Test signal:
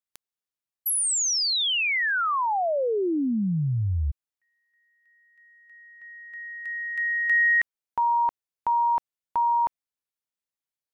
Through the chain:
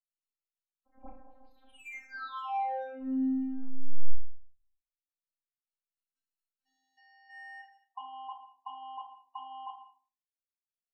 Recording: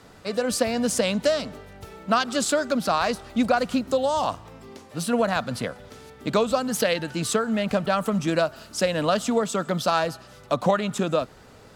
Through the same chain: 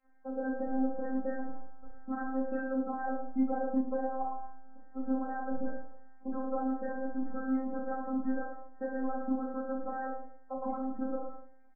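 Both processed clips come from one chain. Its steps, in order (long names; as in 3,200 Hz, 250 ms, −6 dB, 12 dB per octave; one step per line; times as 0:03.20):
running median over 25 samples
low-pass filter 1,600 Hz 12 dB per octave
noise gate −41 dBFS, range −6 dB
low-shelf EQ 470 Hz −5.5 dB
in parallel at 0 dB: downward compressor 12 to 1, threshold −32 dBFS
on the sum: brickwall limiter −19 dBFS
surface crackle 17 per second −47 dBFS
phases set to zero 262 Hz
dead-zone distortion −52.5 dBFS
spectral peaks only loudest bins 16
on a send: reverse bouncing-ball delay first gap 30 ms, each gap 1.2×, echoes 5
on the sum: rectangular room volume 270 cubic metres, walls furnished, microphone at 1.2 metres
level −6.5 dB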